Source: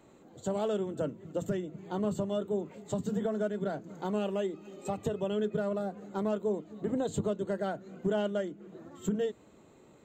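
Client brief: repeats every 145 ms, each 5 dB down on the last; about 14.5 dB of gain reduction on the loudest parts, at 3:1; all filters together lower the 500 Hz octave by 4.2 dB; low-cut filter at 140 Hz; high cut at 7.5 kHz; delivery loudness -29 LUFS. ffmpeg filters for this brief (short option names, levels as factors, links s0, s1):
-af "highpass=140,lowpass=7500,equalizer=f=500:t=o:g=-5.5,acompressor=threshold=0.00316:ratio=3,aecho=1:1:145|290|435|580|725|870|1015:0.562|0.315|0.176|0.0988|0.0553|0.031|0.0173,volume=9.44"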